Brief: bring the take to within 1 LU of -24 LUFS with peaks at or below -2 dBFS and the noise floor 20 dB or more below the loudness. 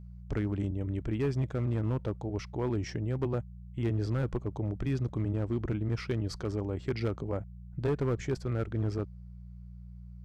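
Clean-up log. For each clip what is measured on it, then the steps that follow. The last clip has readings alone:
clipped 1.5%; flat tops at -23.5 dBFS; hum 60 Hz; harmonics up to 180 Hz; hum level -45 dBFS; loudness -33.5 LUFS; peak -23.5 dBFS; loudness target -24.0 LUFS
-> clip repair -23.5 dBFS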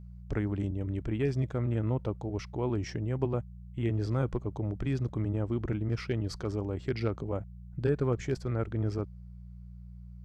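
clipped 0.0%; hum 60 Hz; harmonics up to 180 Hz; hum level -45 dBFS
-> de-hum 60 Hz, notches 3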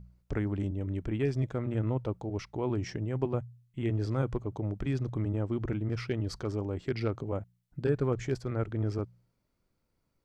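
hum none; loudness -33.0 LUFS; peak -15.5 dBFS; loudness target -24.0 LUFS
-> gain +9 dB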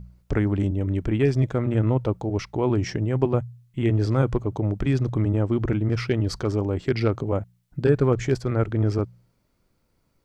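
loudness -24.0 LUFS; peak -6.5 dBFS; noise floor -69 dBFS

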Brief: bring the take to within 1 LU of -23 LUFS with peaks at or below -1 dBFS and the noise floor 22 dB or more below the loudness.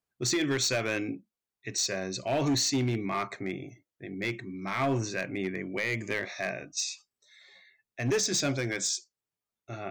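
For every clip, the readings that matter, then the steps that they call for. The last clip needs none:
clipped 1.3%; flat tops at -22.5 dBFS; loudness -30.5 LUFS; peak -22.5 dBFS; loudness target -23.0 LUFS
-> clip repair -22.5 dBFS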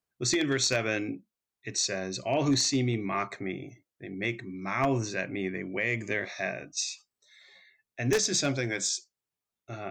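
clipped 0.0%; loudness -29.5 LUFS; peak -13.5 dBFS; loudness target -23.0 LUFS
-> gain +6.5 dB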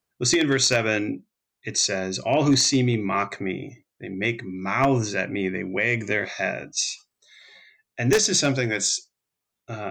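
loudness -23.0 LUFS; peak -7.0 dBFS; noise floor -84 dBFS

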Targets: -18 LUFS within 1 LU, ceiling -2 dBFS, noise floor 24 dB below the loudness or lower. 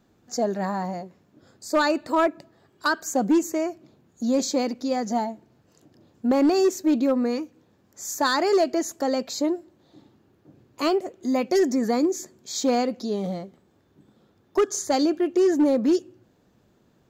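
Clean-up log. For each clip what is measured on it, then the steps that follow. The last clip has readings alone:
clipped 0.8%; flat tops at -14.5 dBFS; loudness -24.0 LUFS; peak -14.5 dBFS; loudness target -18.0 LUFS
-> clip repair -14.5 dBFS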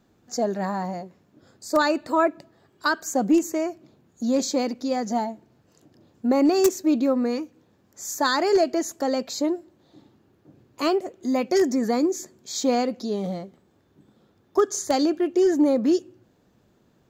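clipped 0.0%; loudness -24.0 LUFS; peak -5.5 dBFS; loudness target -18.0 LUFS
-> gain +6 dB; limiter -2 dBFS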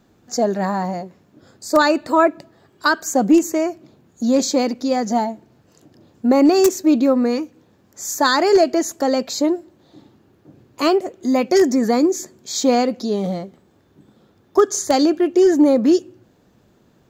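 loudness -18.0 LUFS; peak -2.0 dBFS; noise floor -57 dBFS

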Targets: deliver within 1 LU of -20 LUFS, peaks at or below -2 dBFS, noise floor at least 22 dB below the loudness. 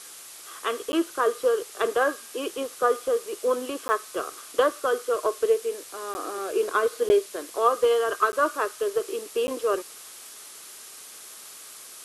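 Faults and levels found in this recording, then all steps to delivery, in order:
dropouts 6; longest dropout 10 ms; noise floor -44 dBFS; noise floor target -48 dBFS; loudness -26.0 LUFS; peak -8.5 dBFS; loudness target -20.0 LUFS
-> interpolate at 0.92/3.88/6.14/7.09/8.32/9.47, 10 ms; denoiser 6 dB, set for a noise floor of -44 dBFS; gain +6 dB

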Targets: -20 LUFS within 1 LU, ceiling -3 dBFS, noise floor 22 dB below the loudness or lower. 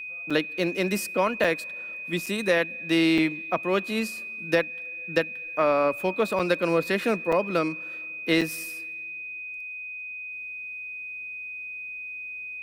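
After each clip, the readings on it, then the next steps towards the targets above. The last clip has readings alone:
dropouts 7; longest dropout 5.4 ms; steady tone 2500 Hz; tone level -34 dBFS; loudness -27.0 LUFS; peak -7.5 dBFS; loudness target -20.0 LUFS
-> interpolate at 0.3/1.44/2.26/3.18/6.39/7.32/8.41, 5.4 ms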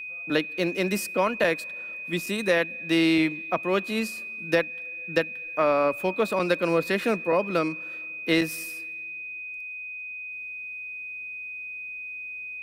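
dropouts 0; steady tone 2500 Hz; tone level -34 dBFS
-> notch 2500 Hz, Q 30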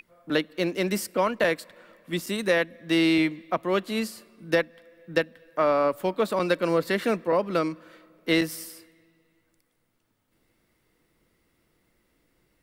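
steady tone none; loudness -26.0 LUFS; peak -7.5 dBFS; loudness target -20.0 LUFS
-> gain +6 dB; limiter -3 dBFS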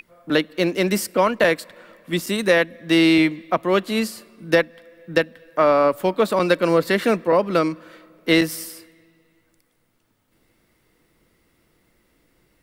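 loudness -20.0 LUFS; peak -3.0 dBFS; noise floor -65 dBFS

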